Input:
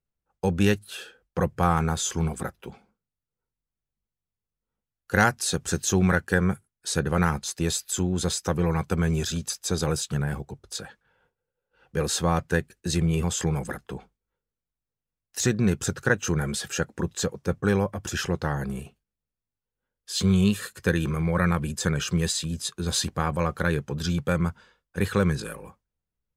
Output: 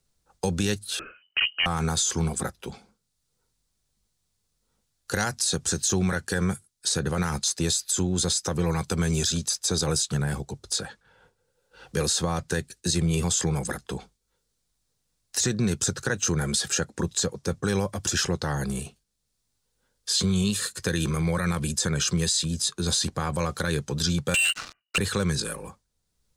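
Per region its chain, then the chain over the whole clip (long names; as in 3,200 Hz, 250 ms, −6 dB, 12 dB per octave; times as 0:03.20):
0:00.99–0:01.66: gain into a clipping stage and back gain 14.5 dB + voice inversion scrambler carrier 3,000 Hz
0:24.34–0:24.98: voice inversion scrambler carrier 2,900 Hz + downward compressor 4 to 1, threshold −28 dBFS + leveller curve on the samples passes 5
whole clip: flat-topped bell 6,000 Hz +9 dB; brickwall limiter −14 dBFS; multiband upward and downward compressor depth 40%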